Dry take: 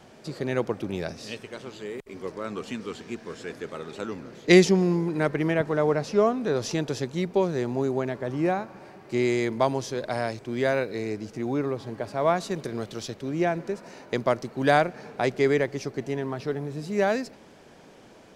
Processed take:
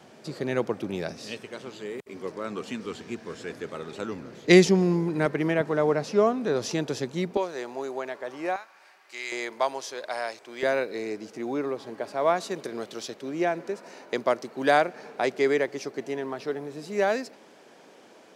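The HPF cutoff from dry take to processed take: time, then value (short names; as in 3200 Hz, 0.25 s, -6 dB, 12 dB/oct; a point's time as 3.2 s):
130 Hz
from 2.85 s 56 Hz
from 5.26 s 150 Hz
from 7.37 s 550 Hz
from 8.56 s 1400 Hz
from 9.32 s 630 Hz
from 10.63 s 280 Hz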